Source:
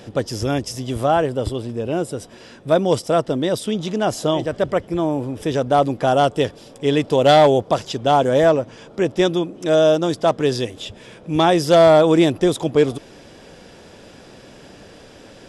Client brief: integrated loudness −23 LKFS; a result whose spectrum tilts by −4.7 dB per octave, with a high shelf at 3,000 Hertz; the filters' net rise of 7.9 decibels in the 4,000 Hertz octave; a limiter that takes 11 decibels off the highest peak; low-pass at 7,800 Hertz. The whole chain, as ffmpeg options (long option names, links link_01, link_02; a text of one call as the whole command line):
ffmpeg -i in.wav -af "lowpass=7800,highshelf=frequency=3000:gain=5.5,equalizer=frequency=4000:width_type=o:gain=6,volume=-1.5dB,alimiter=limit=-12.5dB:level=0:latency=1" out.wav